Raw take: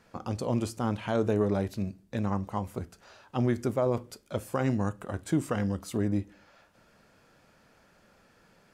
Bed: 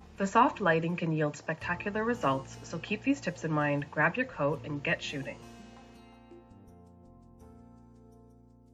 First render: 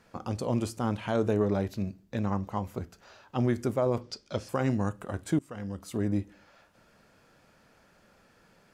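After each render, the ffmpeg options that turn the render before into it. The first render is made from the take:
-filter_complex "[0:a]asettb=1/sr,asplit=3[s0][s1][s2];[s0]atrim=end=1.364[s3];[s1]atrim=start=1.36:end=3.38,asetpts=PTS-STARTPTS,afade=t=in:d=0.004:c=qsin,afade=t=out:st=2.016:d=0.004:c=qsin,equalizer=f=9300:w=3.4:g=-9.5[s4];[s2]atrim=start=3.376[s5];[s3][s4]acrossfade=d=0.004:c1=hsin:c2=qsin[s6];[s6][s5]acrossfade=d=0.004:c1=qsin:c2=hsin,asettb=1/sr,asplit=3[s7][s8][s9];[s7]atrim=end=4.014[s10];[s8]atrim=start=4.01:end=4.49,asetpts=PTS-STARTPTS,afade=t=in:d=0.004:c=qsin,afade=t=out:st=0.476:d=0.004:c=qsin,lowpass=f=5200:t=q:w=3.3[s11];[s9]atrim=start=4.486[s12];[s10][s11]acrossfade=d=0.004:c1=hsin:c2=qsin[s13];[s13][s12]acrossfade=d=0.004:c1=qsin:c2=hsin,asplit=2[s14][s15];[s14]atrim=end=5.39,asetpts=PTS-STARTPTS,afade=t=out:st=5.386:d=0.004:c=hsin:silence=0.0841395[s16];[s15]atrim=start=5.39,asetpts=PTS-STARTPTS,afade=t=in:d=0.72:silence=0.0841395[s17];[s16][s17]concat=n=2:v=0:a=1"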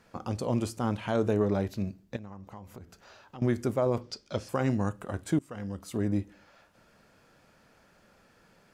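-filter_complex "[0:a]asettb=1/sr,asplit=3[s0][s1][s2];[s0]atrim=end=2.164[s3];[s1]atrim=start=2.16:end=3.42,asetpts=PTS-STARTPTS,afade=t=in:d=0.004:c=qsin,afade=t=out:st=1.256:d=0.004:c=qsin,acompressor=threshold=0.00708:ratio=4:attack=3.2:release=140:knee=1:detection=peak[s4];[s2]atrim=start=3.416[s5];[s3][s4]acrossfade=d=0.004:c1=hsin:c2=qsin[s6];[s6][s5]acrossfade=d=0.004:c1=qsin:c2=hsin"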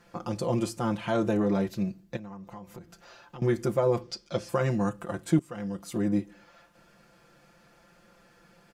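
-af "aecho=1:1:5.8:0.83"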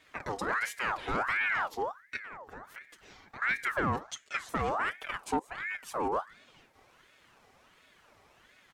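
-af "asoftclip=type=tanh:threshold=0.0944,aeval=exprs='val(0)*sin(2*PI*1300*n/s+1300*0.55/1.4*sin(2*PI*1.4*n/s))':c=same"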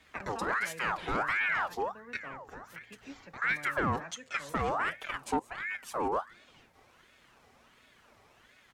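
-filter_complex "[1:a]volume=0.1[s0];[0:a][s0]amix=inputs=2:normalize=0"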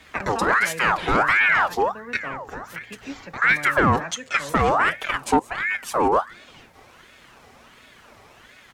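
-af "volume=3.98"

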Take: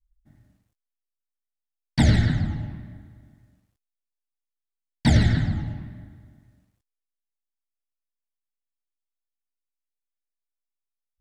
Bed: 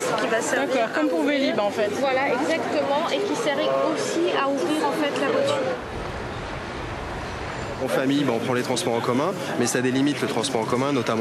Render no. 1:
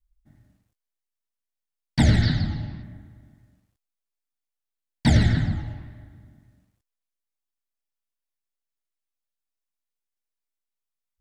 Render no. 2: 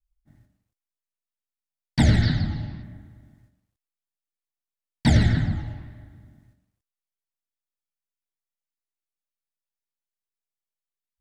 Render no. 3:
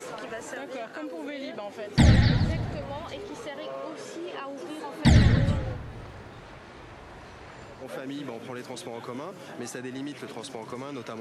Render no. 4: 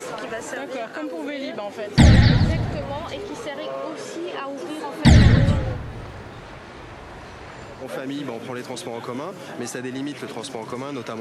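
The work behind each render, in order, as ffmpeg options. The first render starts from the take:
-filter_complex "[0:a]asettb=1/sr,asplit=3[s0][s1][s2];[s0]atrim=end=2.224[s3];[s1]atrim=start=2.22:end=2.83,asetpts=PTS-STARTPTS,afade=t=in:d=0.004:c=qsin,afade=t=out:st=0.606:d=0.004:c=qsin,lowpass=f=4700:t=q:w=4.8[s4];[s2]atrim=start=2.826[s5];[s3][s4]acrossfade=d=0.004:c1=hsin:c2=qsin[s6];[s6][s5]acrossfade=d=0.004:c1=qsin:c2=hsin,asettb=1/sr,asplit=3[s7][s8][s9];[s7]atrim=end=5.554[s10];[s8]atrim=start=5.55:end=6.14,asetpts=PTS-STARTPTS,afade=t=in:d=0.004:c=qsin,afade=t=out:st=0.586:d=0.004:c=qsin,equalizer=f=190:t=o:w=0.77:g=-10.5[s11];[s9]atrim=start=6.136[s12];[s10][s11]acrossfade=d=0.004:c1=hsin:c2=qsin[s13];[s13][s12]acrossfade=d=0.004:c1=qsin:c2=hsin"
-af "agate=range=0.447:threshold=0.00141:ratio=16:detection=peak,adynamicequalizer=threshold=0.00891:dfrequency=3000:dqfactor=0.7:tfrequency=3000:tqfactor=0.7:attack=5:release=100:ratio=0.375:range=2:mode=cutabove:tftype=highshelf"
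-filter_complex "[1:a]volume=0.188[s0];[0:a][s0]amix=inputs=2:normalize=0"
-af "volume=2.11,alimiter=limit=0.794:level=0:latency=1"

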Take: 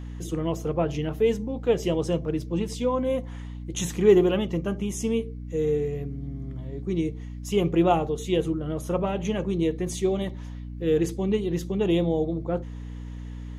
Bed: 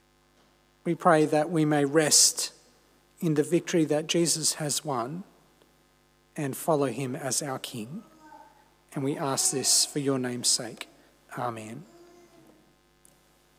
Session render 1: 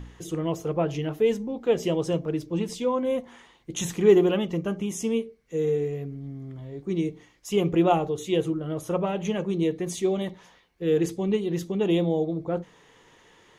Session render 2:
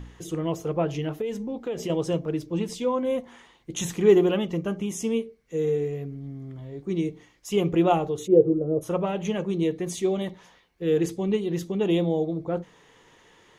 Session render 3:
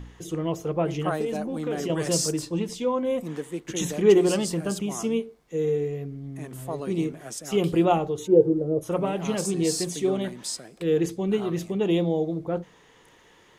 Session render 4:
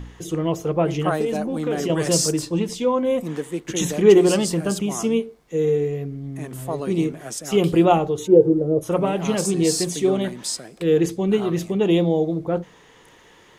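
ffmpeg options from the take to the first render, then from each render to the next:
-af "bandreject=f=60:t=h:w=4,bandreject=f=120:t=h:w=4,bandreject=f=180:t=h:w=4,bandreject=f=240:t=h:w=4,bandreject=f=300:t=h:w=4"
-filter_complex "[0:a]asettb=1/sr,asplit=3[s0][s1][s2];[s0]atrim=end=1.214[s3];[s1]atrim=start=1.21:end=1.9,asetpts=PTS-STARTPTS,afade=t=in:d=0.004:c=qsin,afade=t=out:st=0.686:d=0.004:c=qsin,acompressor=threshold=0.0501:ratio=6:attack=3.2:release=140:knee=1:detection=peak[s4];[s2]atrim=start=1.896[s5];[s3][s4]acrossfade=d=0.004:c1=hsin:c2=qsin[s6];[s6][s5]acrossfade=d=0.004:c1=qsin:c2=hsin,asplit=3[s7][s8][s9];[s7]afade=t=out:st=8.26:d=0.02[s10];[s8]lowpass=f=480:t=q:w=3.2,afade=t=in:st=8.26:d=0.02,afade=t=out:st=8.81:d=0.02[s11];[s9]afade=t=in:st=8.81:d=0.02[s12];[s10][s11][s12]amix=inputs=3:normalize=0"
-filter_complex "[1:a]volume=0.376[s0];[0:a][s0]amix=inputs=2:normalize=0"
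-af "volume=1.78,alimiter=limit=0.708:level=0:latency=1"

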